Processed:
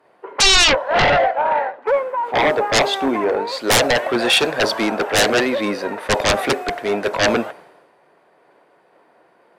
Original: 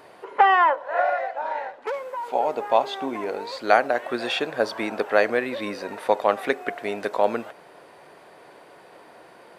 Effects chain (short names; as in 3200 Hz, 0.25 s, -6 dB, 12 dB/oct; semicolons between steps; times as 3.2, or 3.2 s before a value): dynamic EQ 610 Hz, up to +4 dB, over -30 dBFS, Q 2.8; sine folder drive 18 dB, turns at -2.5 dBFS; three-band expander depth 100%; gain -9.5 dB